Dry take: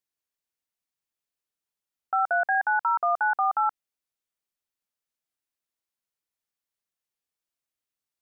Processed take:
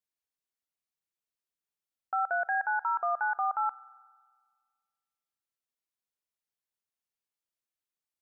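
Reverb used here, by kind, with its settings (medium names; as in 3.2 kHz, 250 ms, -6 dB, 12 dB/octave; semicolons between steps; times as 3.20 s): spring tank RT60 1.7 s, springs 45 ms, chirp 55 ms, DRR 19 dB; trim -5.5 dB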